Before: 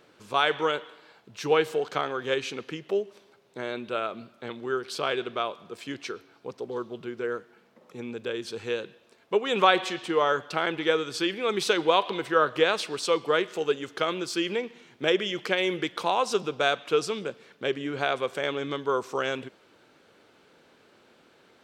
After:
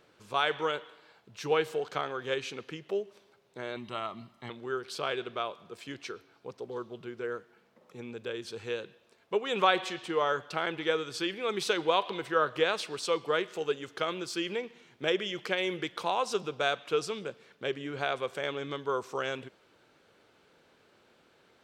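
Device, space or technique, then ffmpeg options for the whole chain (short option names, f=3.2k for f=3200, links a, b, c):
low shelf boost with a cut just above: -filter_complex "[0:a]asettb=1/sr,asplit=3[a][b][c];[a]atrim=end=3.764[d];[b]atrim=start=3.76:end=4.5,asetpts=PTS-STARTPTS,afade=t=in:d=0.004:c=qsin,afade=t=out:st=0.736:d=0.004:c=qsin,aecho=1:1:1:0.74,atrim=end_sample=32634[e];[c]atrim=start=4.496[f];[d][e]acrossfade=d=0.004:c1=hsin:c2=qsin[g];[g][f]acrossfade=d=0.004:c1=qsin:c2=hsin,lowshelf=f=94:g=5.5,equalizer=f=260:t=o:w=0.88:g=-3,volume=-4.5dB"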